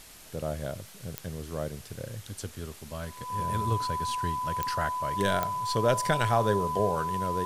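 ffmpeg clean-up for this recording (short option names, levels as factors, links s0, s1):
-af "adeclick=t=4,bandreject=f=1000:w=30,afwtdn=0.0035"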